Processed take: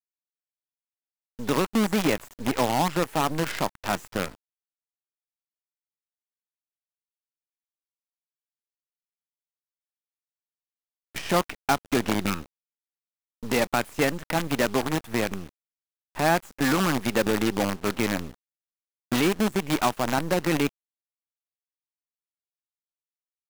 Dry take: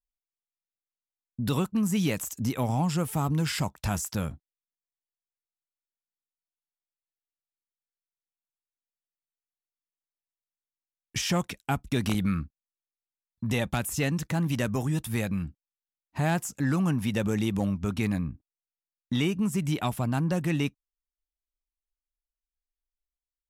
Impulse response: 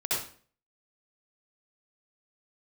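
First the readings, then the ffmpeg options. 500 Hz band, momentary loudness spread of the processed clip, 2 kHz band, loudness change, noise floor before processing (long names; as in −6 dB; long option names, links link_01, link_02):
+7.5 dB, 8 LU, +6.5 dB, +3.0 dB, below −85 dBFS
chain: -filter_complex "[0:a]acrossover=split=240 2500:gain=0.0891 1 0.1[link_01][link_02][link_03];[link_01][link_02][link_03]amix=inputs=3:normalize=0,aeval=exprs='0.15*(cos(1*acos(clip(val(0)/0.15,-1,1)))-cos(1*PI/2))+0.0106*(cos(2*acos(clip(val(0)/0.15,-1,1)))-cos(2*PI/2))+0.00335*(cos(4*acos(clip(val(0)/0.15,-1,1)))-cos(4*PI/2))+0.00106*(cos(6*acos(clip(val(0)/0.15,-1,1)))-cos(6*PI/2))':channel_layout=same,acrusher=bits=6:dc=4:mix=0:aa=0.000001,volume=8dB"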